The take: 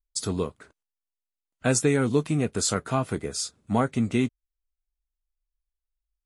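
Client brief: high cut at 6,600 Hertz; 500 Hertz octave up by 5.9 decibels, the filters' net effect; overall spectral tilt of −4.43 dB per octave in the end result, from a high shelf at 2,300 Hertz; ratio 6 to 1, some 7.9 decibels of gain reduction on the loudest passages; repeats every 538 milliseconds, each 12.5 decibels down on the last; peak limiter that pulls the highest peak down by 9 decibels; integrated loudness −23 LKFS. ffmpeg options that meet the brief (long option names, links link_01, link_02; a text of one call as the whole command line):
ffmpeg -i in.wav -af "lowpass=6600,equalizer=frequency=500:width_type=o:gain=7,highshelf=frequency=2300:gain=4,acompressor=threshold=-21dB:ratio=6,alimiter=limit=-16.5dB:level=0:latency=1,aecho=1:1:538|1076|1614:0.237|0.0569|0.0137,volume=6.5dB" out.wav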